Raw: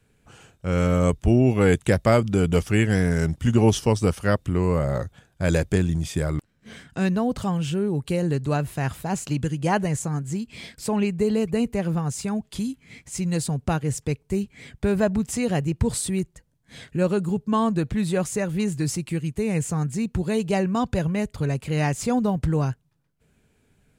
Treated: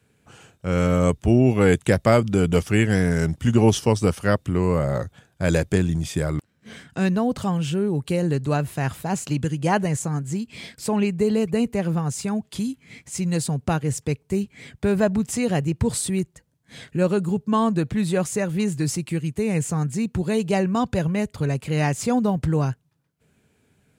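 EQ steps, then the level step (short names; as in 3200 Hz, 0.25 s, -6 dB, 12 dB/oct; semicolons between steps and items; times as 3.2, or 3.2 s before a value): HPF 79 Hz; +1.5 dB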